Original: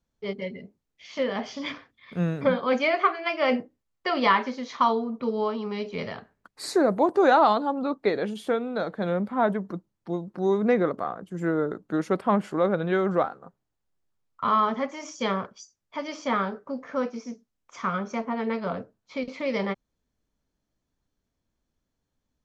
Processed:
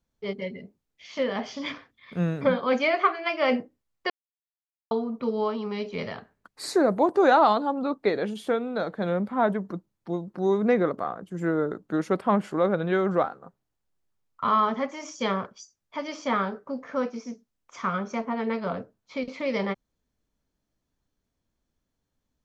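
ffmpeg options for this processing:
-filter_complex "[0:a]asplit=3[a][b][c];[a]atrim=end=4.1,asetpts=PTS-STARTPTS,afade=t=out:st=4.096:d=0.004:c=hsin[d];[b]atrim=start=4.1:end=4.91,asetpts=PTS-STARTPTS,volume=0[e];[c]atrim=start=4.91,asetpts=PTS-STARTPTS,afade=t=in:d=0.004:c=hsin[f];[d][e][f]concat=n=3:v=0:a=1"

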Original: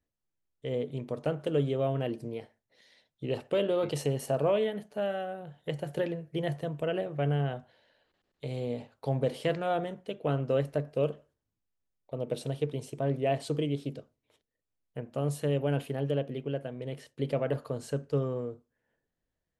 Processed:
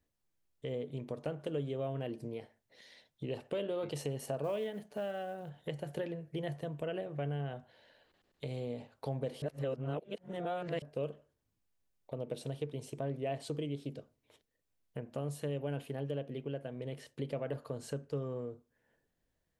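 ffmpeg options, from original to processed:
-filter_complex "[0:a]asplit=3[a][b][c];[a]afade=t=out:st=4.43:d=0.02[d];[b]acrusher=bits=8:mode=log:mix=0:aa=0.000001,afade=t=in:st=4.43:d=0.02,afade=t=out:st=5.48:d=0.02[e];[c]afade=t=in:st=5.48:d=0.02[f];[d][e][f]amix=inputs=3:normalize=0,asplit=3[g][h][i];[g]atrim=end=9.422[j];[h]atrim=start=9.418:end=10.822,asetpts=PTS-STARTPTS,areverse[k];[i]atrim=start=10.818[l];[j][k]acrossfade=d=0.004:c1=hsin:c2=hsin[m];[m][l]acrossfade=d=0.004:c1=hsin:c2=hsin,bandreject=f=1.3k:w=29,acompressor=threshold=-47dB:ratio=2,volume=3.5dB"

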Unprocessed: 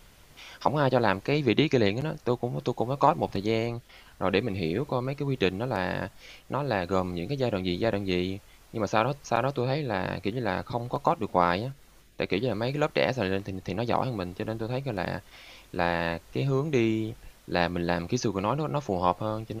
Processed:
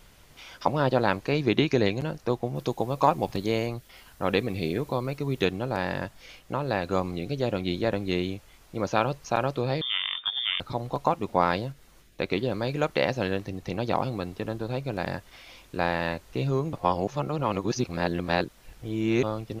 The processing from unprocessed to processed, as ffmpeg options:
-filter_complex "[0:a]asettb=1/sr,asplit=3[a][b][c];[a]atrim=end=2.554[d];[b]atrim=start=2.55:end=5.45,asetpts=PTS-STARTPTS,afade=t=in:d=0.004:c=qsin,afade=t=out:st=2.896:d=0.004:c=qsin,highshelf=f=9.3k:g=10.5[e];[c]atrim=start=5.446[f];[d][e]acrossfade=d=0.004:c1=hsin:c2=qsin[g];[g][f]acrossfade=d=0.004:c1=qsin:c2=hsin,asettb=1/sr,asplit=3[h][i][j];[h]atrim=end=9.814[k];[i]atrim=start=9.81:end=10.6,asetpts=PTS-STARTPTS,afade=t=in:d=0.004:c=qsin,afade=t=out:st=0.786:d=0.004:c=qsin,lowpass=f=3.1k:t=q:w=0.5098,lowpass=f=3.1k:t=q:w=0.6013,lowpass=f=3.1k:t=q:w=0.9,lowpass=f=3.1k:t=q:w=2.563,afreqshift=-3700[l];[j]atrim=start=10.596[m];[k][l]acrossfade=d=0.004:c1=hsin:c2=qsin[n];[n][m]acrossfade=d=0.004:c1=qsin:c2=hsin,asplit=3[o][p][q];[o]atrim=end=16.732[r];[p]atrim=start=16.728:end=19.232,asetpts=PTS-STARTPTS,areverse[s];[q]atrim=start=19.228[t];[r][s]acrossfade=d=0.004:c1=hsin:c2=hsin[u];[u][t]acrossfade=d=0.004:c1=hsin:c2=hsin"

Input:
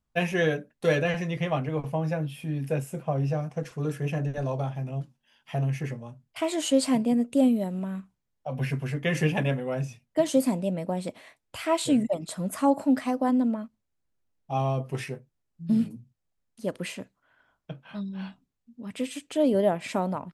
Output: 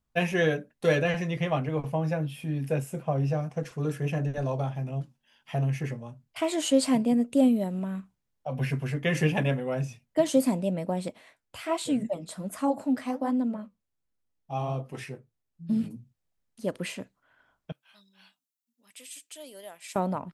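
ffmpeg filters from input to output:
-filter_complex "[0:a]asettb=1/sr,asplit=3[a][b][c];[a]atrim=end=11.084[d];[b]atrim=start=11.08:end=15.84,asetpts=PTS-STARTPTS,afade=t=in:d=0.004:c=qsin,afade=t=out:st=4.756:d=0.004:c=qsin,flanger=delay=3.7:depth=9.9:regen=-58:speed=1.3:shape=sinusoidal[e];[c]atrim=start=15.836[f];[d][e]acrossfade=d=0.004:c1=hsin:c2=qsin[g];[g][f]acrossfade=d=0.004:c1=qsin:c2=hsin,asettb=1/sr,asplit=3[h][i][j];[h]atrim=end=17.724[k];[i]atrim=start=17.72:end=19.96,asetpts=PTS-STARTPTS,afade=t=in:d=0.004:c=qsin,afade=t=out:st=2.236:d=0.004:c=qsin,aderivative[l];[j]atrim=start=19.956[m];[k][l]acrossfade=d=0.004:c1=hsin:c2=qsin[n];[n][m]acrossfade=d=0.004:c1=qsin:c2=hsin"

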